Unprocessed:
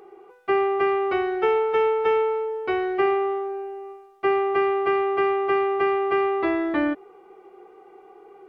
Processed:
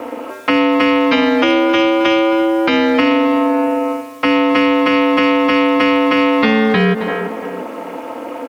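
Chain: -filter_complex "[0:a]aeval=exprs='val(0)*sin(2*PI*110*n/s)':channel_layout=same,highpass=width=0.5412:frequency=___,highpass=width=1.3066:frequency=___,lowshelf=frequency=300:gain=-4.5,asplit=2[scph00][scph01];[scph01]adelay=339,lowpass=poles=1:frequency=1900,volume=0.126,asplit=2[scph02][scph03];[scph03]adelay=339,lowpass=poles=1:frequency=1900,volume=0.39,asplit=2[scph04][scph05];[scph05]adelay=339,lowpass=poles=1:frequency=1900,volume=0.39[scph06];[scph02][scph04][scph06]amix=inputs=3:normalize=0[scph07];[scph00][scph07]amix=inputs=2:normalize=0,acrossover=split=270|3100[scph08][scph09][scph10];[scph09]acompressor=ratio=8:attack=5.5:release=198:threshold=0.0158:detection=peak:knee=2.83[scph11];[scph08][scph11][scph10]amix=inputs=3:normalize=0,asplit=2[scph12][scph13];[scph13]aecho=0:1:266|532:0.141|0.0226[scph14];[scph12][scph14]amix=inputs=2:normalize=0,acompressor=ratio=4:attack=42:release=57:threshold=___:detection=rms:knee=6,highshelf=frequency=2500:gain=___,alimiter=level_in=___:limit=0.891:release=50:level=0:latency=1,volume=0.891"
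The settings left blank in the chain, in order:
64, 64, 0.0126, 11, 18.8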